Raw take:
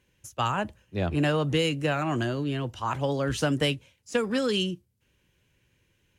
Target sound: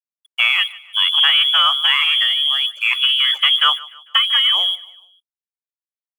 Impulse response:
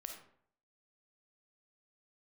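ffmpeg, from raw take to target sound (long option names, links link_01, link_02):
-filter_complex "[0:a]afftdn=noise_reduction=19:noise_floor=-37,acrossover=split=2000[link_01][link_02];[link_01]aeval=exprs='0.2*sin(PI/2*1.41*val(0)/0.2)':channel_layout=same[link_03];[link_03][link_02]amix=inputs=2:normalize=0,lowpass=frequency=3000:width_type=q:width=0.5098,lowpass=frequency=3000:width_type=q:width=0.6013,lowpass=frequency=3000:width_type=q:width=0.9,lowpass=frequency=3000:width_type=q:width=2.563,afreqshift=-3500,aeval=exprs='sgn(val(0))*max(abs(val(0))-0.00562,0)':channel_layout=same,highpass=frequency=1200:width_type=q:width=6.3,aecho=1:1:149|298|447:0.0944|0.0415|0.0183,volume=4dB"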